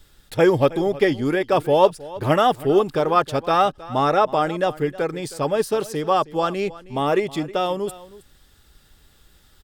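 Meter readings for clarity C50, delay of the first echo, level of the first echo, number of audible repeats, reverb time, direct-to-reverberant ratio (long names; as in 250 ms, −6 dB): no reverb audible, 317 ms, −18.5 dB, 1, no reverb audible, no reverb audible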